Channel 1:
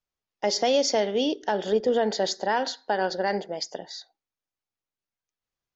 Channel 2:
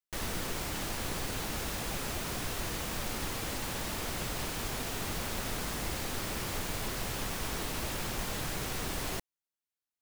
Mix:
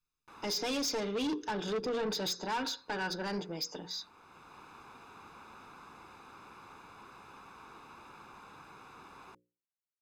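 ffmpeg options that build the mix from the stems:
ffmpeg -i stem1.wav -i stem2.wav -filter_complex "[0:a]bandreject=frequency=780:width=12,aecho=1:1:6.6:0.35,volume=-2.5dB,asplit=2[link_01][link_02];[1:a]bandpass=frequency=820:width_type=q:width=1.1:csg=0,adelay=150,volume=-10dB[link_03];[link_02]apad=whole_len=448325[link_04];[link_03][link_04]sidechaincompress=threshold=-40dB:ratio=8:attack=7.7:release=862[link_05];[link_01][link_05]amix=inputs=2:normalize=0,bandreject=frequency=60:width_type=h:width=6,bandreject=frequency=120:width_type=h:width=6,bandreject=frequency=180:width_type=h:width=6,bandreject=frequency=240:width_type=h:width=6,bandreject=frequency=300:width_type=h:width=6,bandreject=frequency=360:width_type=h:width=6,bandreject=frequency=420:width_type=h:width=6,bandreject=frequency=480:width_type=h:width=6,bandreject=frequency=540:width_type=h:width=6,aecho=1:1:0.8:0.75,asoftclip=type=tanh:threshold=-30dB" out.wav

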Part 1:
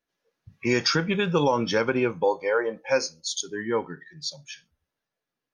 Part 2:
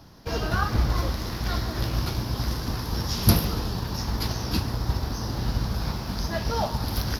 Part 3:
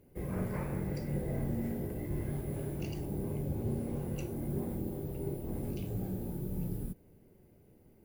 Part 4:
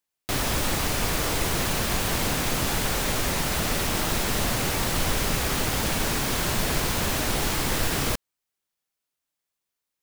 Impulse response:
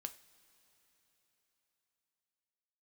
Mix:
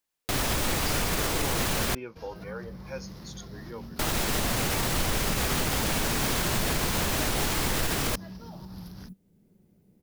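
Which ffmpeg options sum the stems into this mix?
-filter_complex "[0:a]volume=-16dB[link_01];[1:a]acompressor=threshold=-28dB:ratio=6,alimiter=limit=-23dB:level=0:latency=1:release=121,adelay=1900,volume=-14dB[link_02];[2:a]equalizer=frequency=190:width_type=o:width=0.59:gain=13.5,alimiter=level_in=6.5dB:limit=-24dB:level=0:latency=1:release=432,volume=-6.5dB,adelay=2200,volume=-6dB[link_03];[3:a]alimiter=limit=-17.5dB:level=0:latency=1:release=61,volume=0.5dB,asplit=3[link_04][link_05][link_06];[link_04]atrim=end=1.95,asetpts=PTS-STARTPTS,afade=type=out:start_time=1.946:duration=0.004:curve=hsin[link_07];[link_05]atrim=start=1.95:end=3.99,asetpts=PTS-STARTPTS,volume=0[link_08];[link_06]atrim=start=3.99,asetpts=PTS-STARTPTS,afade=type=in:duration=0.004:curve=hsin[link_09];[link_07][link_08][link_09]concat=n=3:v=0:a=1[link_10];[link_01][link_02][link_03][link_10]amix=inputs=4:normalize=0"

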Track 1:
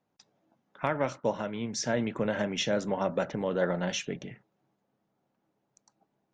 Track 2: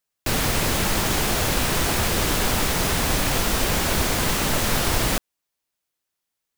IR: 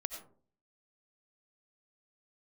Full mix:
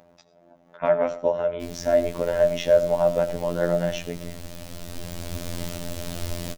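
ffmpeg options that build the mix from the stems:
-filter_complex "[0:a]acompressor=mode=upward:threshold=-45dB:ratio=2.5,volume=1.5dB,asplit=3[link_01][link_02][link_03];[link_02]volume=-5dB[link_04];[1:a]acrossover=split=320|3000[link_05][link_06][link_07];[link_06]acompressor=threshold=-39dB:ratio=4[link_08];[link_05][link_08][link_07]amix=inputs=3:normalize=0,adelay=1350,volume=-5.5dB,asplit=2[link_09][link_10];[link_10]volume=-7dB[link_11];[link_03]apad=whole_len=349702[link_12];[link_09][link_12]sidechaincompress=threshold=-47dB:ratio=8:attack=16:release=998[link_13];[2:a]atrim=start_sample=2205[link_14];[link_04][link_11]amix=inputs=2:normalize=0[link_15];[link_15][link_14]afir=irnorm=-1:irlink=0[link_16];[link_01][link_13][link_16]amix=inputs=3:normalize=0,highshelf=frequency=3500:gain=-8,afftfilt=real='hypot(re,im)*cos(PI*b)':imag='0':win_size=2048:overlap=0.75,equalizer=frequency=610:width_type=o:width=0.21:gain=13"

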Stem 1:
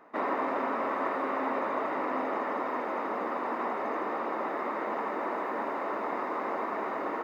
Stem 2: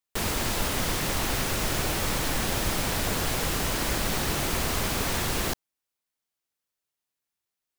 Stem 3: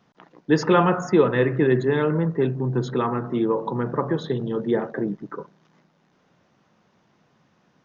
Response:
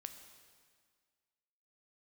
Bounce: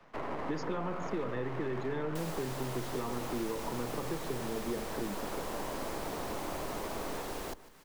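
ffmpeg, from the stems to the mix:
-filter_complex "[0:a]aeval=exprs='max(val(0),0)':channel_layout=same,volume=-0.5dB,asplit=2[link_01][link_02];[link_02]volume=-6.5dB[link_03];[1:a]equalizer=frequency=120:width_type=o:width=2.4:gain=-14.5,adelay=2000,volume=-3.5dB,asplit=2[link_04][link_05];[link_05]volume=-22dB[link_06];[2:a]alimiter=limit=-12.5dB:level=0:latency=1,volume=-5dB[link_07];[link_03][link_06]amix=inputs=2:normalize=0,aecho=0:1:151|302|453|604|755|906:1|0.46|0.212|0.0973|0.0448|0.0206[link_08];[link_01][link_04][link_07][link_08]amix=inputs=4:normalize=0,acrossover=split=88|240|950[link_09][link_10][link_11][link_12];[link_09]acompressor=threshold=-43dB:ratio=4[link_13];[link_10]acompressor=threshold=-45dB:ratio=4[link_14];[link_11]acompressor=threshold=-37dB:ratio=4[link_15];[link_12]acompressor=threshold=-47dB:ratio=4[link_16];[link_13][link_14][link_15][link_16]amix=inputs=4:normalize=0"

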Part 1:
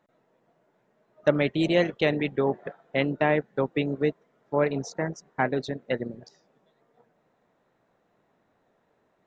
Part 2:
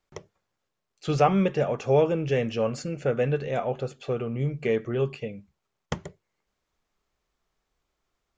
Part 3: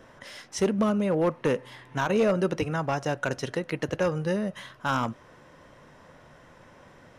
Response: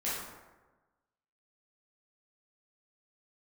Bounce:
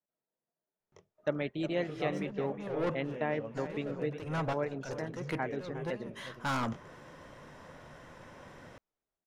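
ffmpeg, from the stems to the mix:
-filter_complex "[0:a]agate=range=-17dB:threshold=-59dB:ratio=16:detection=peak,volume=-10.5dB,asplit=3[link_01][link_02][link_03];[link_02]volume=-12dB[link_04];[1:a]flanger=delay=17.5:depth=5.1:speed=2.6,adelay=800,volume=-15.5dB,asplit=2[link_05][link_06];[link_06]volume=-15dB[link_07];[2:a]asoftclip=type=tanh:threshold=-29dB,adelay=1600,volume=1dB[link_08];[link_03]apad=whole_len=387198[link_09];[link_08][link_09]sidechaincompress=threshold=-50dB:ratio=16:attack=11:release=198[link_10];[link_04][link_07]amix=inputs=2:normalize=0,aecho=0:1:361:1[link_11];[link_01][link_05][link_10][link_11]amix=inputs=4:normalize=0,adynamicequalizer=threshold=0.00316:dfrequency=2600:dqfactor=0.7:tfrequency=2600:tqfactor=0.7:attack=5:release=100:ratio=0.375:range=3:mode=cutabove:tftype=highshelf"

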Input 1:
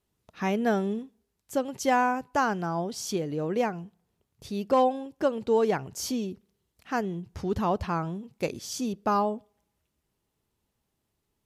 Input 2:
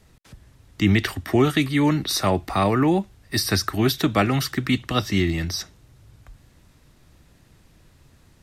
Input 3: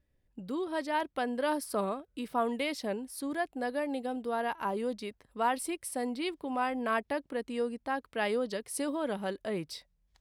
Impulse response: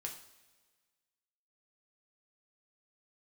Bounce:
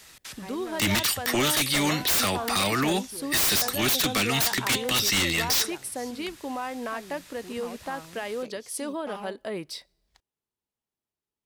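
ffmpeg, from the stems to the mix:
-filter_complex "[0:a]asoftclip=type=hard:threshold=-24dB,volume=-19dB[link_01];[1:a]tiltshelf=frequency=970:gain=-9,acrossover=split=300|3000[link_02][link_03][link_04];[link_03]acompressor=threshold=-32dB:ratio=6[link_05];[link_02][link_05][link_04]amix=inputs=3:normalize=0,volume=-0.5dB[link_06];[2:a]acontrast=53,alimiter=limit=-23.5dB:level=0:latency=1:release=375,volume=-6.5dB,asplit=2[link_07][link_08];[link_08]volume=-22dB[link_09];[3:a]atrim=start_sample=2205[link_10];[link_09][link_10]afir=irnorm=-1:irlink=0[link_11];[link_01][link_06][link_07][link_11]amix=inputs=4:normalize=0,lowshelf=frequency=190:gain=-9,acontrast=76,aeval=exprs='0.133*(abs(mod(val(0)/0.133+3,4)-2)-1)':channel_layout=same"

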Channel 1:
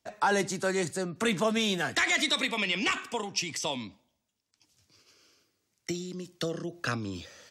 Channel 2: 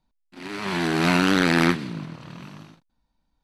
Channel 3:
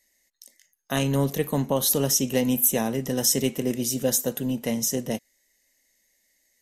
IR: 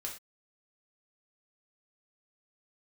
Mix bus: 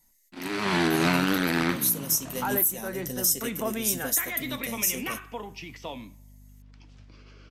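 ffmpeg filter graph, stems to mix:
-filter_complex "[0:a]lowpass=2500,acompressor=mode=upward:threshold=-40dB:ratio=2.5,aeval=exprs='val(0)+0.00562*(sin(2*PI*50*n/s)+sin(2*PI*2*50*n/s)/2+sin(2*PI*3*50*n/s)/3+sin(2*PI*4*50*n/s)/4+sin(2*PI*5*50*n/s)/5)':channel_layout=same,adelay=2200,volume=-5.5dB,asplit=2[link_01][link_02];[link_02]volume=-8dB[link_03];[1:a]volume=-1dB,asplit=2[link_04][link_05];[link_05]volume=-4.5dB[link_06];[2:a]aemphasis=mode=production:type=75fm,flanger=delay=4.8:depth=7.4:regen=52:speed=0.7:shape=triangular,volume=-6.5dB[link_07];[3:a]atrim=start_sample=2205[link_08];[link_03][link_06]amix=inputs=2:normalize=0[link_09];[link_09][link_08]afir=irnorm=-1:irlink=0[link_10];[link_01][link_04][link_07][link_10]amix=inputs=4:normalize=0,alimiter=limit=-12dB:level=0:latency=1:release=386"

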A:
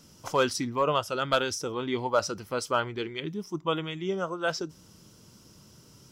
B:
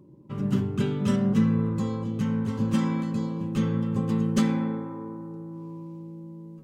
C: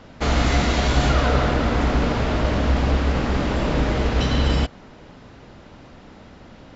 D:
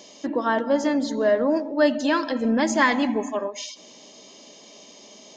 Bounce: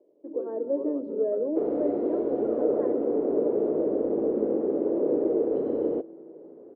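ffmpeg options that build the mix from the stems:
ffmpeg -i stem1.wav -i stem2.wav -i stem3.wav -i stem4.wav -filter_complex "[0:a]volume=-12dB[link_01];[1:a]dynaudnorm=framelen=420:gausssize=5:maxgain=11.5dB,volume=-12.5dB[link_02];[2:a]adelay=1350,volume=-1dB[link_03];[3:a]volume=-6dB,asplit=2[link_04][link_05];[link_05]apad=whole_len=292664[link_06];[link_02][link_06]sidechaincompress=threshold=-38dB:ratio=8:attack=16:release=113[link_07];[link_01][link_07][link_03][link_04]amix=inputs=4:normalize=0,dynaudnorm=framelen=130:gausssize=7:maxgain=7.5dB,asuperpass=centerf=410:order=4:qfactor=2.2" out.wav

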